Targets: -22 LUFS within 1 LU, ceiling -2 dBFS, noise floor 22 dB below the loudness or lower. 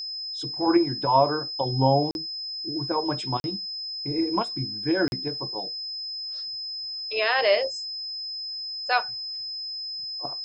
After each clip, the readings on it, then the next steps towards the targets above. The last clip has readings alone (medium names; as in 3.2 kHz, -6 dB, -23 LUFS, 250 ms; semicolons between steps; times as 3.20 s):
dropouts 3; longest dropout 41 ms; steady tone 5.1 kHz; tone level -31 dBFS; loudness -26.5 LUFS; peak level -7.5 dBFS; loudness target -22.0 LUFS
-> interpolate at 2.11/3.40/5.08 s, 41 ms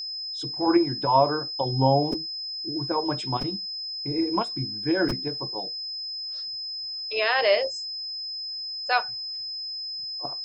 dropouts 0; steady tone 5.1 kHz; tone level -31 dBFS
-> band-stop 5.1 kHz, Q 30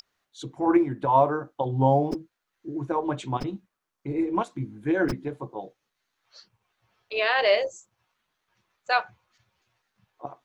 steady tone not found; loudness -26.0 LUFS; peak level -8.0 dBFS; loudness target -22.0 LUFS
-> trim +4 dB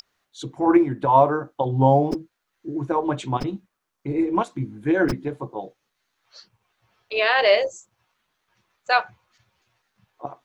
loudness -22.0 LUFS; peak level -4.0 dBFS; noise floor -78 dBFS